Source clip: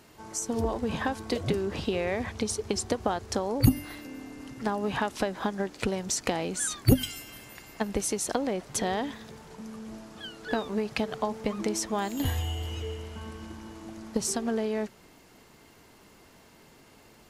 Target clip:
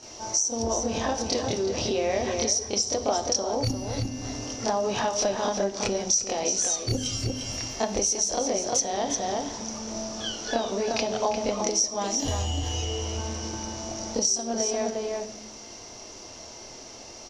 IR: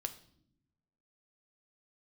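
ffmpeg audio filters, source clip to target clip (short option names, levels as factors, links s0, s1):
-filter_complex "[0:a]lowpass=f=5800:t=q:w=14,asplit=2[s0][s1];[s1]adelay=349.9,volume=0.447,highshelf=f=4000:g=-7.87[s2];[s0][s2]amix=inputs=2:normalize=0,asplit=2[s3][s4];[1:a]atrim=start_sample=2205,adelay=26[s5];[s4][s5]afir=irnorm=-1:irlink=0,volume=2.37[s6];[s3][s6]amix=inputs=2:normalize=0,acompressor=threshold=0.0562:ratio=4,equalizer=f=160:t=o:w=0.67:g=-9,equalizer=f=630:t=o:w=0.67:g=7,equalizer=f=1600:t=o:w=0.67:g=-5"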